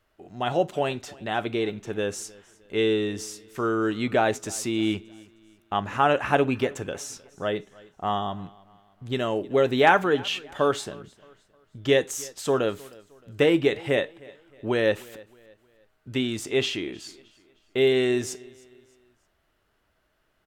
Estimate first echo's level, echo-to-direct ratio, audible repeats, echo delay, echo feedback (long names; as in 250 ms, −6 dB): −23.0 dB, −22.5 dB, 2, 310 ms, 39%